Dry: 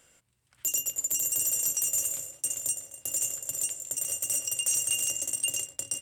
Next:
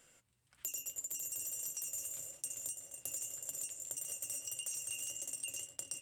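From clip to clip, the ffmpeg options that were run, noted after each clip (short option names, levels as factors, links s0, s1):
-af "flanger=delay=4:depth=8:regen=-44:speed=1.7:shape=triangular,acompressor=threshold=0.0112:ratio=6"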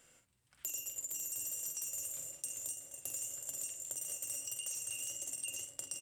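-filter_complex "[0:a]asplit=2[s0][s1];[s1]adelay=47,volume=0.447[s2];[s0][s2]amix=inputs=2:normalize=0"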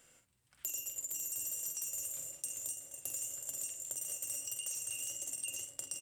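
-af "highshelf=f=11000:g=3"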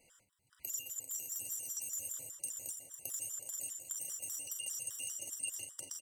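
-filter_complex "[0:a]asplit=2[s0][s1];[s1]adelay=37,volume=0.398[s2];[s0][s2]amix=inputs=2:normalize=0,afftfilt=real='re*gt(sin(2*PI*5*pts/sr)*(1-2*mod(floor(b*sr/1024/980),2)),0)':imag='im*gt(sin(2*PI*5*pts/sr)*(1-2*mod(floor(b*sr/1024/980),2)),0)':win_size=1024:overlap=0.75,volume=1.12"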